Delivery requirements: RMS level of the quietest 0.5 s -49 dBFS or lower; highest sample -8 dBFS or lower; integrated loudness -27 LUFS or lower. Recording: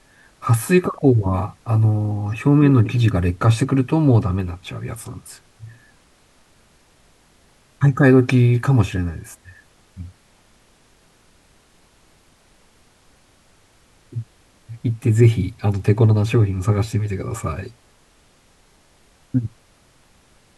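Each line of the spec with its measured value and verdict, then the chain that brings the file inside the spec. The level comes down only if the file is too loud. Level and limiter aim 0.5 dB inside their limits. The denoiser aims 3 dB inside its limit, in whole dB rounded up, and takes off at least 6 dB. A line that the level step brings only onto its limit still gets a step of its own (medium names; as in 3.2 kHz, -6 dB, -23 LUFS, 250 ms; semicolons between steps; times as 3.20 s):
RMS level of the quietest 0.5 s -55 dBFS: pass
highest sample -2.0 dBFS: fail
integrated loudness -18.5 LUFS: fail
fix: trim -9 dB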